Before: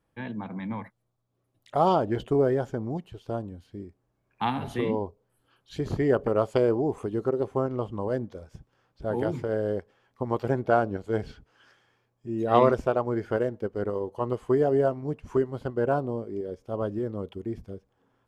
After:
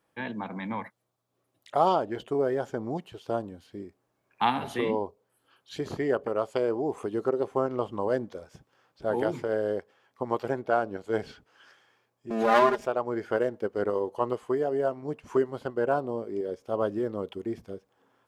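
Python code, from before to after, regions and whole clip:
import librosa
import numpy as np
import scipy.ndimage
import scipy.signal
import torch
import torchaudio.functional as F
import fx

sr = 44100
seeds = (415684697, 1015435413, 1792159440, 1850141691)

y = fx.chain(x, sr, fx.lower_of_two(delay_ms=4.9),
    fx.comb(ms=4.9, depth=0.79),
    fx.pre_swell(db_per_s=48.0), at=(12.3, 12.87))
y = fx.highpass(y, sr, hz=410.0, slope=6)
y = fx.rider(y, sr, range_db=5, speed_s=0.5)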